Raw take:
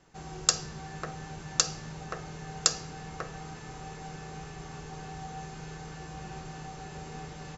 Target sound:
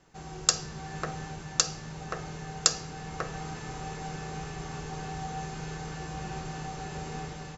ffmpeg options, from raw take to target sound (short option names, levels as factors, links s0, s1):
-af "dynaudnorm=f=170:g=5:m=1.68"